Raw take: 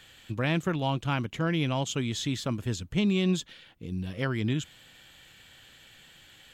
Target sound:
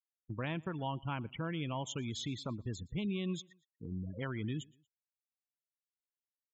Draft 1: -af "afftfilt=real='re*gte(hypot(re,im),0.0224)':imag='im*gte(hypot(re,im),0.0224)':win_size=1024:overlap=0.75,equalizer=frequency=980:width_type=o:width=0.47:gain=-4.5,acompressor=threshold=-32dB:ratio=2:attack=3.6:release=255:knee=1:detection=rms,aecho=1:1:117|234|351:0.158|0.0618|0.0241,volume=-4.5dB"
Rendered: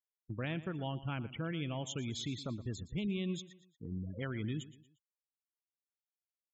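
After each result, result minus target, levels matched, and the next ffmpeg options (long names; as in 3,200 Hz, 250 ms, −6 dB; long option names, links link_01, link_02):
echo-to-direct +9 dB; 1,000 Hz band −4.5 dB
-af "afftfilt=real='re*gte(hypot(re,im),0.0224)':imag='im*gte(hypot(re,im),0.0224)':win_size=1024:overlap=0.75,equalizer=frequency=980:width_type=o:width=0.47:gain=-4.5,acompressor=threshold=-32dB:ratio=2:attack=3.6:release=255:knee=1:detection=rms,aecho=1:1:117|234:0.0562|0.0219,volume=-4.5dB"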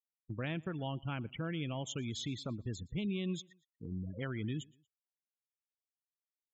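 1,000 Hz band −4.5 dB
-af "afftfilt=real='re*gte(hypot(re,im),0.0224)':imag='im*gte(hypot(re,im),0.0224)':win_size=1024:overlap=0.75,equalizer=frequency=980:width_type=o:width=0.47:gain=5,acompressor=threshold=-32dB:ratio=2:attack=3.6:release=255:knee=1:detection=rms,aecho=1:1:117|234:0.0562|0.0219,volume=-4.5dB"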